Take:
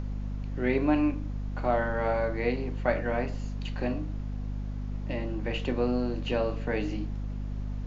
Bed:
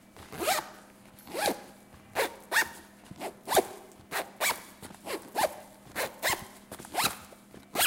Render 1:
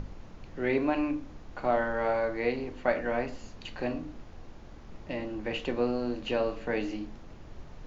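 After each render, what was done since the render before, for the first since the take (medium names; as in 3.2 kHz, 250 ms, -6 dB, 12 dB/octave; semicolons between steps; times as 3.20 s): hum notches 50/100/150/200/250/300 Hz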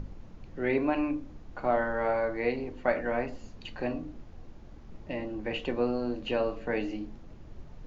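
noise reduction 6 dB, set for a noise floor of -47 dBFS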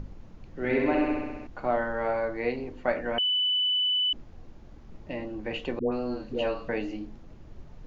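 0.52–1.47 s: flutter echo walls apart 11.2 m, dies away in 1.4 s; 3.18–4.13 s: bleep 2.99 kHz -22.5 dBFS; 5.79–6.69 s: phase dispersion highs, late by 131 ms, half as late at 720 Hz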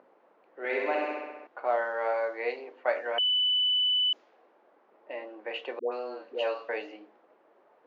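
high-pass 450 Hz 24 dB/octave; level-controlled noise filter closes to 1.5 kHz, open at -23.5 dBFS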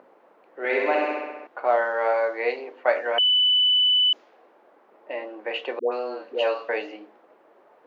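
trim +6.5 dB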